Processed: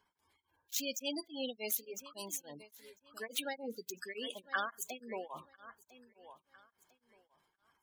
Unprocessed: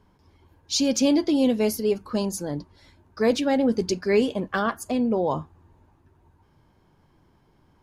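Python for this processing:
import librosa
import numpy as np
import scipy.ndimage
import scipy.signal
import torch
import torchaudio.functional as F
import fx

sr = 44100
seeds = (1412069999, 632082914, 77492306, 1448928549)

p1 = scipy.ndimage.median_filter(x, 9, mode='constant')
p2 = librosa.effects.preemphasis(p1, coef=0.97, zi=[0.0])
p3 = fx.spec_gate(p2, sr, threshold_db=-15, keep='strong')
p4 = fx.low_shelf(p3, sr, hz=330.0, db=-7.0)
p5 = p4 + fx.echo_feedback(p4, sr, ms=1001, feedback_pct=28, wet_db=-17, dry=0)
p6 = p5 * np.abs(np.cos(np.pi * 3.5 * np.arange(len(p5)) / sr))
y = p6 * 10.0 ** (9.0 / 20.0)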